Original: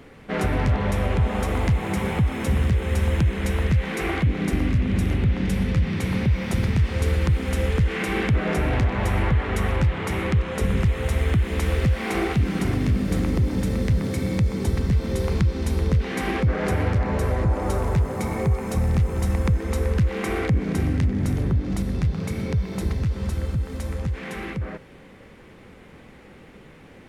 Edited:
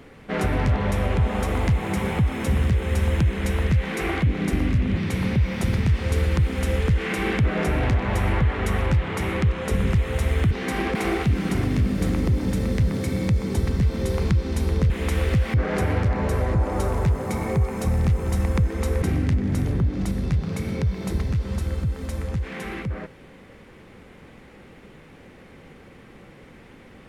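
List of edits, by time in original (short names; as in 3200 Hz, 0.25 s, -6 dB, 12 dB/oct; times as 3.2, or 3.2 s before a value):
4.97–5.87 cut
11.41–12.05 swap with 16–16.44
19.92–20.73 cut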